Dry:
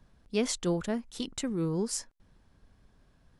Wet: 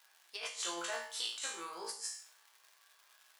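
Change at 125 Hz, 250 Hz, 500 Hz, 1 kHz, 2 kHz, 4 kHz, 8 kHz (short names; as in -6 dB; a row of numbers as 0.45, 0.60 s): under -35 dB, -23.5 dB, -14.0 dB, 0.0 dB, +1.5 dB, +0.5 dB, -3.5 dB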